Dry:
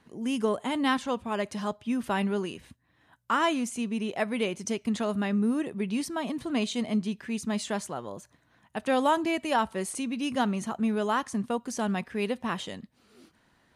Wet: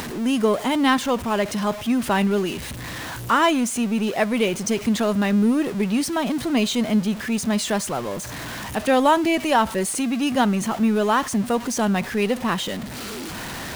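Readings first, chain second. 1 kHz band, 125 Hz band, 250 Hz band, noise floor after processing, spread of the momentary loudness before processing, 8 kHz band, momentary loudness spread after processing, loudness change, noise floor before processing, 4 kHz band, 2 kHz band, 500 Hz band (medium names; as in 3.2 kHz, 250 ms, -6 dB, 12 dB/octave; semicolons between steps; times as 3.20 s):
+7.5 dB, +9.0 dB, +8.0 dB, -33 dBFS, 7 LU, +10.5 dB, 12 LU, +7.5 dB, -67 dBFS, +9.0 dB, +8.0 dB, +8.0 dB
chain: jump at every zero crossing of -35 dBFS; upward compressor, threshold -37 dBFS; trim +6.5 dB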